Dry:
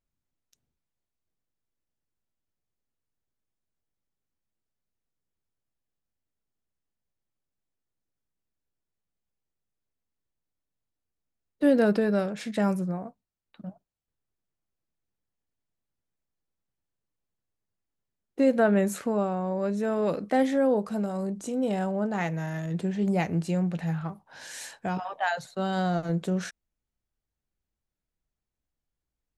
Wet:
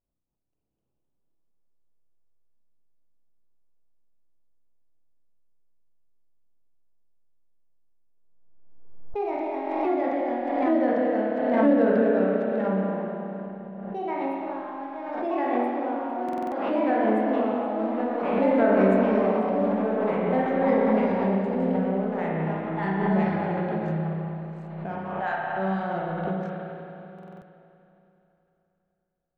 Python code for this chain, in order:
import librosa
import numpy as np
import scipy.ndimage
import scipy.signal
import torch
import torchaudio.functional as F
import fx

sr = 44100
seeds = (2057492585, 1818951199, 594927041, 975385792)

y = fx.wiener(x, sr, points=25)
y = fx.high_shelf(y, sr, hz=3300.0, db=-11.0)
y = fx.rev_spring(y, sr, rt60_s=3.2, pass_ms=(31, 52), chirp_ms=60, drr_db=-5.5)
y = fx.echo_pitch(y, sr, ms=312, semitones=2, count=3, db_per_echo=-3.0)
y = fx.bass_treble(y, sr, bass_db=-4, treble_db=-9)
y = fx.buffer_glitch(y, sr, at_s=(2.25, 16.24, 27.14), block=2048, repeats=5)
y = fx.pre_swell(y, sr, db_per_s=32.0)
y = F.gain(torch.from_numpy(y), -3.5).numpy()